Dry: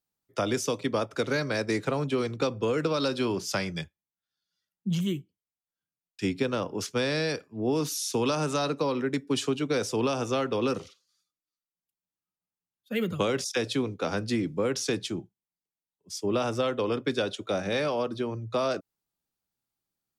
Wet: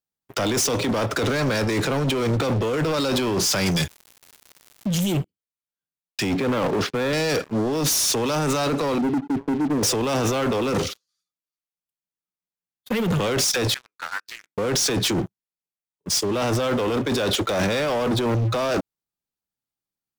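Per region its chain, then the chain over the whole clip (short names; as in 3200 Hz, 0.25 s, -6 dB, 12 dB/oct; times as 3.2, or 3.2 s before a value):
3.65–5.12 tone controls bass -3 dB, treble +11 dB + crackle 290/s -56 dBFS
6.35–7.13 BPF 140–2500 Hz + air absorption 77 m
8.98–9.83 ladder low-pass 350 Hz, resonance 50% + resonator 200 Hz, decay 0.34 s, mix 40%
13.74–14.58 band-pass 1500 Hz, Q 3.9 + differentiator + Doppler distortion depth 0.24 ms
whole clip: limiter -20 dBFS; negative-ratio compressor -35 dBFS, ratio -1; sample leveller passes 5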